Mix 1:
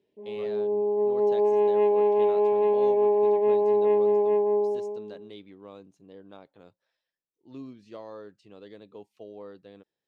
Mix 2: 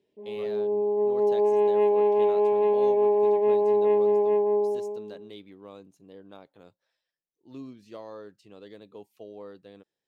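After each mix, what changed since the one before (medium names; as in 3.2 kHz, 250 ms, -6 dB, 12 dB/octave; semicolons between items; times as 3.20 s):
master: remove distance through air 58 m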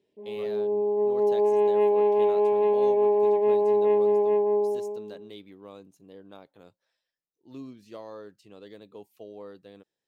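master: add treble shelf 11 kHz +8.5 dB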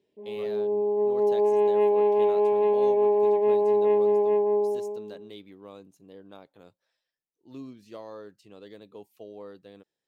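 no change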